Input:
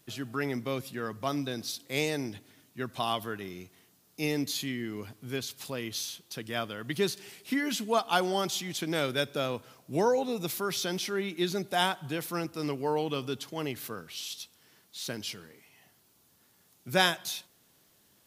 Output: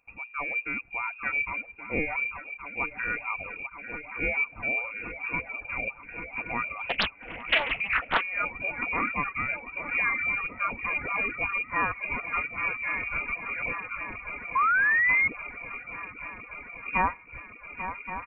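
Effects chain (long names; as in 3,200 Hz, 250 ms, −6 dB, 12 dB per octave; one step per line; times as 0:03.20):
flat-topped bell 600 Hz −11.5 dB
comb filter 4.3 ms, depth 36%
feedback echo with a long and a short gap by turns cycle 1,122 ms, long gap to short 3 to 1, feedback 79%, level −11.5 dB
automatic gain control gain up to 8 dB
reverb reduction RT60 0.67 s
floating-point word with a short mantissa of 4 bits
0:14.55–0:15.28: sound drawn into the spectrogram fall 420–1,600 Hz −20 dBFS
voice inversion scrambler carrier 2,600 Hz
0:06.79–0:08.26: highs frequency-modulated by the lows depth 0.88 ms
level −2.5 dB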